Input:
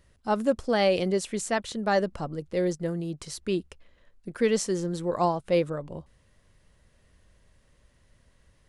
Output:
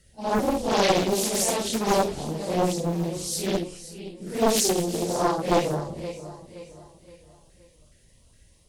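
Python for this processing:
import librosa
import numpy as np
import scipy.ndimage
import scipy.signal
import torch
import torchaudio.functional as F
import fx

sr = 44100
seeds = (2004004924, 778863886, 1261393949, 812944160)

p1 = fx.phase_scramble(x, sr, seeds[0], window_ms=200)
p2 = fx.filter_lfo_notch(p1, sr, shape='saw_up', hz=2.4, low_hz=940.0, high_hz=2000.0, q=0.93)
p3 = fx.cheby_harmonics(p2, sr, harmonics=(4,), levels_db=(-22,), full_scale_db=-12.5)
p4 = fx.high_shelf(p3, sr, hz=5000.0, db=12.0)
p5 = p4 + fx.echo_feedback(p4, sr, ms=521, feedback_pct=41, wet_db=-13.5, dry=0)
p6 = fx.doppler_dist(p5, sr, depth_ms=0.88)
y = p6 * librosa.db_to_amplitude(3.5)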